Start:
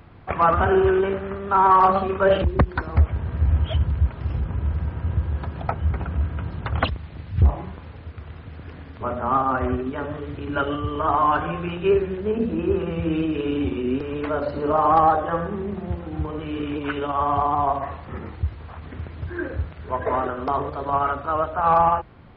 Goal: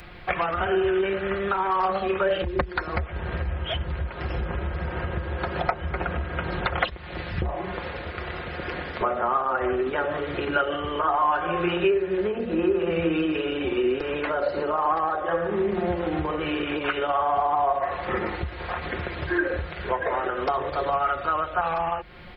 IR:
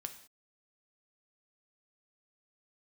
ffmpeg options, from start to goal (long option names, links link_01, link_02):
-filter_complex "[0:a]equalizer=frequency=125:width_type=o:width=1:gain=-8,equalizer=frequency=250:width_type=o:width=1:gain=-6,equalizer=frequency=1000:width_type=o:width=1:gain=-6,equalizer=frequency=2000:width_type=o:width=1:gain=3,acrossover=split=280|1500[link_01][link_02][link_03];[link_02]dynaudnorm=framelen=280:gausssize=21:maxgain=10dB[link_04];[link_01][link_04][link_03]amix=inputs=3:normalize=0,highshelf=frequency=2100:gain=7.5,acompressor=threshold=-30dB:ratio=5,aecho=1:1:5.6:0.51,volume=6.5dB"